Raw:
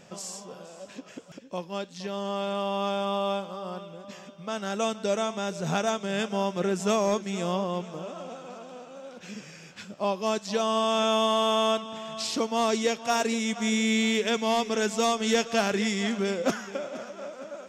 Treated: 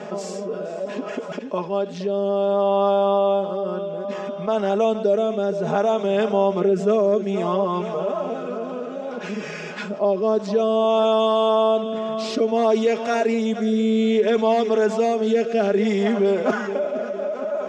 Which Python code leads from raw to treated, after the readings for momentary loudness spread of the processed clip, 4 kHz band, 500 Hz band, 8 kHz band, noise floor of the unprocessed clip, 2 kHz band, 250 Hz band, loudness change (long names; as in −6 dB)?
11 LU, −3.0 dB, +10.0 dB, can't be measured, −48 dBFS, 0.0 dB, +6.0 dB, +6.0 dB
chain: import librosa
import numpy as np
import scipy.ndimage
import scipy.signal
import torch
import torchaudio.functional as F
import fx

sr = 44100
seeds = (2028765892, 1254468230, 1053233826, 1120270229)

y = fx.highpass(x, sr, hz=350.0, slope=6)
y = fx.rotary(y, sr, hz=0.6)
y = fx.bandpass_q(y, sr, hz=460.0, q=0.73)
y = y + 0.9 * np.pad(y, (int(4.8 * sr / 1000.0), 0))[:len(y)]
y = fx.env_flatten(y, sr, amount_pct=50)
y = y * librosa.db_to_amplitude(6.5)